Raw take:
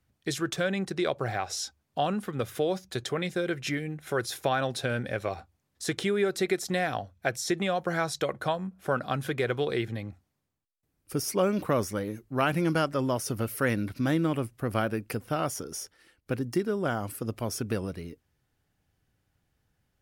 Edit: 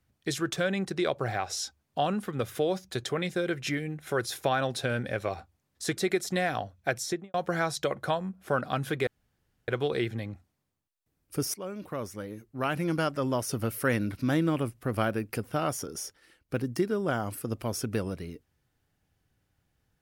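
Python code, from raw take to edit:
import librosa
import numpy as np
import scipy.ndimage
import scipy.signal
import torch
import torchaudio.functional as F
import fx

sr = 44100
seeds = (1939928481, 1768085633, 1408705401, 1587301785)

y = fx.studio_fade_out(x, sr, start_s=7.39, length_s=0.33)
y = fx.edit(y, sr, fx.cut(start_s=5.97, length_s=0.38),
    fx.insert_room_tone(at_s=9.45, length_s=0.61),
    fx.fade_in_from(start_s=11.31, length_s=2.01, floor_db=-15.0), tone=tone)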